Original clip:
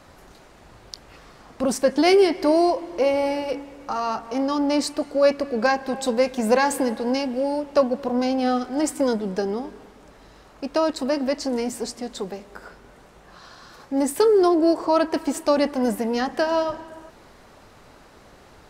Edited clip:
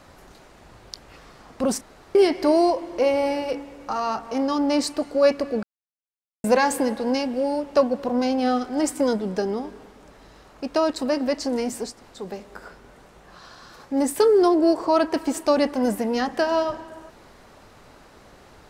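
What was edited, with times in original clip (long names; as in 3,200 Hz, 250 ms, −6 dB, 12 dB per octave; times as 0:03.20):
0:01.81–0:02.15: fill with room tone
0:05.63–0:06.44: silence
0:11.92–0:12.20: fill with room tone, crossfade 0.24 s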